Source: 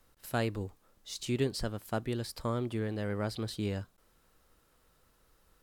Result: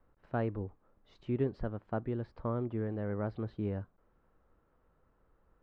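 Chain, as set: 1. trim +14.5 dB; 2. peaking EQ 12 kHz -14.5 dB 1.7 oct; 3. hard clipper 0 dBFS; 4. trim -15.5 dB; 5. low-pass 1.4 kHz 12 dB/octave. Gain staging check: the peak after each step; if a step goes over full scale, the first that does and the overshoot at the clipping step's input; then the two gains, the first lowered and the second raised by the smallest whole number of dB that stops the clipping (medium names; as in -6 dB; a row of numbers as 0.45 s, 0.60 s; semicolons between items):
-5.0 dBFS, -5.5 dBFS, -5.5 dBFS, -21.0 dBFS, -21.5 dBFS; nothing clips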